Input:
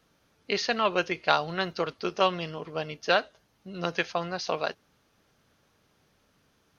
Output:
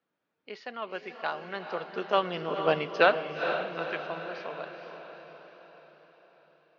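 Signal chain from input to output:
source passing by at 0:02.72, 12 m/s, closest 2.6 metres
band-pass filter 210–2,700 Hz
feedback delay with all-pass diffusion 462 ms, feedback 52%, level −7 dB
level +8 dB

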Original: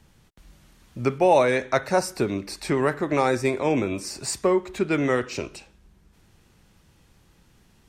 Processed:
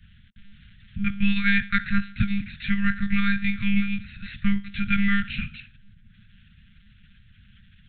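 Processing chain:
one-pitch LPC vocoder at 8 kHz 200 Hz
Chebyshev band-stop filter 220–1,500 Hz, order 4
level +6.5 dB

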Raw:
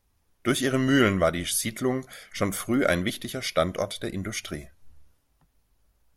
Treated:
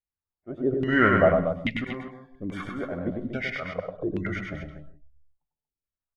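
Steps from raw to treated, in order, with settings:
noise reduction from a noise print of the clip's start 30 dB
volume swells 296 ms
in parallel at −10.5 dB: hard clipping −24 dBFS, distortion −7 dB
on the sum: auto-filter low-pass saw down 1.2 Hz 260–2,700 Hz
loudspeakers that aren't time-aligned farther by 34 metres −4 dB, 81 metres −9 dB
on a send at −13 dB: convolution reverb, pre-delay 94 ms
on the sum: level −2.5 dB

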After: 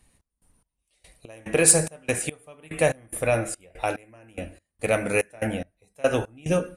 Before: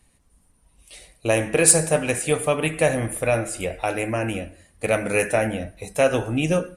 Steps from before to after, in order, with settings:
gate pattern "x.x..x.x" 72 BPM −24 dB
level −1.5 dB

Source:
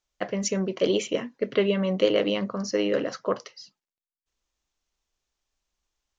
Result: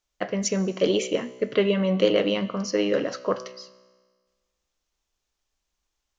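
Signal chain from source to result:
tuned comb filter 63 Hz, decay 1.5 s, harmonics all, mix 50%
hum removal 126.5 Hz, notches 39
level +7 dB

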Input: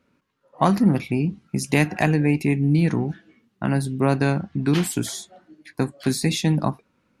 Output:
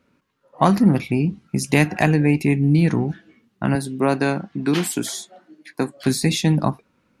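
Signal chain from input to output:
0:03.75–0:05.97: high-pass filter 210 Hz 12 dB per octave
level +2.5 dB

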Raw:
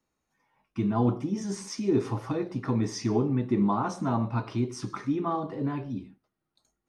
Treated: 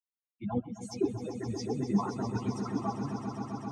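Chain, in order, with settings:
spectral dynamics exaggerated over time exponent 3
time stretch by phase vocoder 0.54×
echo that builds up and dies away 131 ms, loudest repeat 5, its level −11 dB
level +3 dB

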